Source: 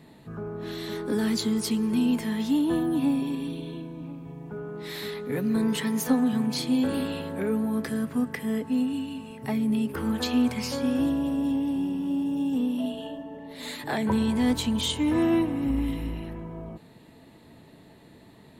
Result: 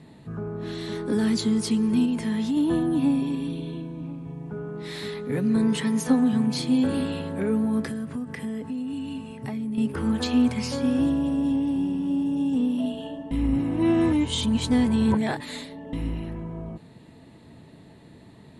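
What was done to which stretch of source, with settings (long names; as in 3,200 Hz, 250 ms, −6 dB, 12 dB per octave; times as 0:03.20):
0:02.05–0:02.57: downward compressor, threshold −24 dBFS
0:07.86–0:09.78: downward compressor 10 to 1, threshold −30 dBFS
0:13.31–0:15.93: reverse
whole clip: Butterworth low-pass 11,000 Hz 72 dB per octave; parametric band 110 Hz +5.5 dB 2.3 octaves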